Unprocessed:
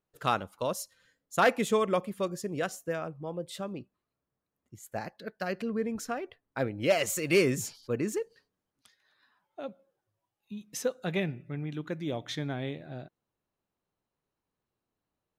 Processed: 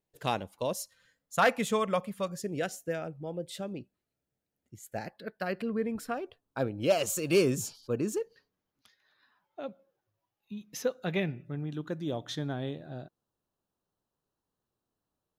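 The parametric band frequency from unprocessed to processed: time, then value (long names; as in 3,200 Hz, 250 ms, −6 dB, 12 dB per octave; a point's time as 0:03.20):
parametric band −13.5 dB 0.36 octaves
1,300 Hz
from 0:00.81 350 Hz
from 0:02.39 1,100 Hz
from 0:05.08 6,300 Hz
from 0:06.14 2,000 Hz
from 0:08.21 8,500 Hz
from 0:11.45 2,200 Hz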